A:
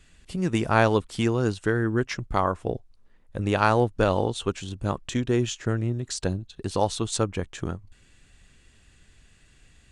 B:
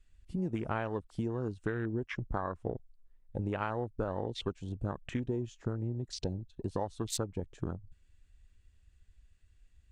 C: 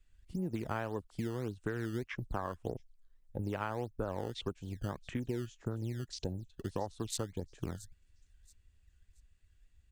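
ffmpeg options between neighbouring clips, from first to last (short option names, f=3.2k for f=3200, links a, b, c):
-af "acompressor=threshold=-27dB:ratio=8,afwtdn=0.0112,volume=-3dB"
-filter_complex "[0:a]acrossover=split=280|4300[a][b][c];[a]acrusher=samples=16:mix=1:aa=0.000001:lfo=1:lforange=25.6:lforate=1.7[d];[c]aecho=1:1:677|1354|2031:0.224|0.0627|0.0176[e];[d][b][e]amix=inputs=3:normalize=0,volume=-2.5dB"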